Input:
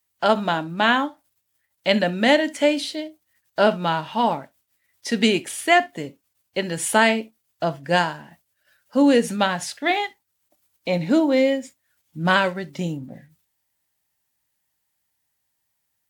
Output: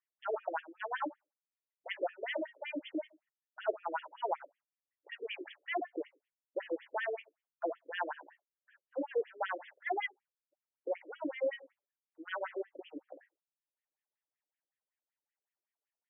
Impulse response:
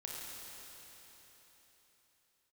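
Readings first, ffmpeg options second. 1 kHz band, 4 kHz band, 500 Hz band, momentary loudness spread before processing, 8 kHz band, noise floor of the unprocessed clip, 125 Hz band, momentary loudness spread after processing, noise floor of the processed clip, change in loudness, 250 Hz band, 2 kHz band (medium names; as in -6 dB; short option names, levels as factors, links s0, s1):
-17.0 dB, -23.5 dB, -16.0 dB, 14 LU, under -40 dB, -75 dBFS, under -40 dB, 12 LU, under -85 dBFS, -18.5 dB, -23.5 dB, -18.0 dB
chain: -af "areverse,acompressor=threshold=0.0708:ratio=12,areverse,highshelf=f=3400:g=-10,acompressor=mode=upward:threshold=0.00316:ratio=2.5,agate=range=0.0708:threshold=0.00126:ratio=16:detection=peak,afftfilt=real='re*between(b*sr/1024,390*pow(2500/390,0.5+0.5*sin(2*PI*5.3*pts/sr))/1.41,390*pow(2500/390,0.5+0.5*sin(2*PI*5.3*pts/sr))*1.41)':imag='im*between(b*sr/1024,390*pow(2500/390,0.5+0.5*sin(2*PI*5.3*pts/sr))/1.41,390*pow(2500/390,0.5+0.5*sin(2*PI*5.3*pts/sr))*1.41)':win_size=1024:overlap=0.75,volume=0.794"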